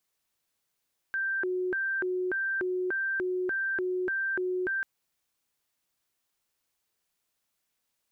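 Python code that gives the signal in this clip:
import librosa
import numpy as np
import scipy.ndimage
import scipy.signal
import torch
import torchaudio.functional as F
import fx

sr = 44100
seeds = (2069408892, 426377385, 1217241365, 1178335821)

y = fx.siren(sr, length_s=3.69, kind='hi-lo', low_hz=366.0, high_hz=1570.0, per_s=1.7, wave='sine', level_db=-27.0)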